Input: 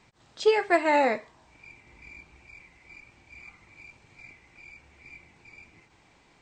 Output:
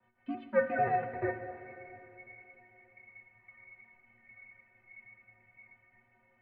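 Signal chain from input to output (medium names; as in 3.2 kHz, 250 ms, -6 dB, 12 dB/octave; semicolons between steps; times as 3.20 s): slices played last to first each 87 ms, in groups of 3; mistuned SSB -150 Hz 170–2500 Hz; inharmonic resonator 110 Hz, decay 0.37 s, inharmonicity 0.03; plate-style reverb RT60 3.1 s, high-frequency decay 0.9×, DRR 7.5 dB; trim +2.5 dB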